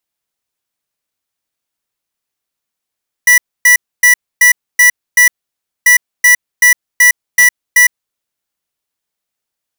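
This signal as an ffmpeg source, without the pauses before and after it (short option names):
-f lavfi -i "aevalsrc='0.501*(2*lt(mod(1960*t,1),0.5)-1)*clip(min(mod(mod(t,2.59),0.38),0.11-mod(mod(t,2.59),0.38))/0.005,0,1)*lt(mod(t,2.59),2.28)':d=5.18:s=44100"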